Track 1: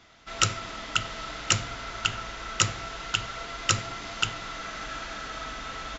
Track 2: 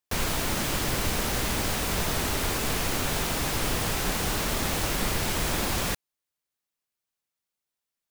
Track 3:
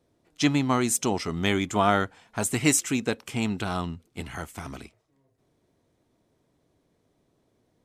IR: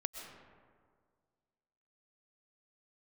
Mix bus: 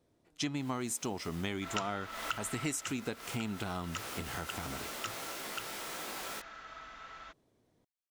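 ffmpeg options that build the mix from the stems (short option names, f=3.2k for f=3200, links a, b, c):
-filter_complex "[0:a]equalizer=f=1.3k:t=o:w=2.7:g=10,adelay=1350,volume=-8.5dB,afade=t=out:st=2.53:d=0.39:silence=0.251189[a];[1:a]highpass=340,flanger=delay=15.5:depth=3.6:speed=0.27,adelay=450,volume=-9.5dB[b];[2:a]volume=-3.5dB,asplit=2[c][d];[d]apad=whole_len=377484[e];[b][e]sidechaincompress=threshold=-37dB:ratio=5:attack=16:release=181[f];[a][f][c]amix=inputs=3:normalize=0,acompressor=threshold=-34dB:ratio=4"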